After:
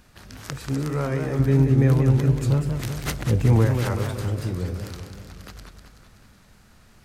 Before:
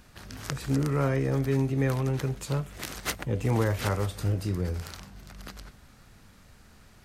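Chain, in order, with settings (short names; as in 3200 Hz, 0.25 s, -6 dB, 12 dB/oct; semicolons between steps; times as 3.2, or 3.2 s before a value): 1.39–3.67 low shelf 300 Hz +11 dB; warbling echo 0.189 s, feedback 59%, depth 216 cents, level -7 dB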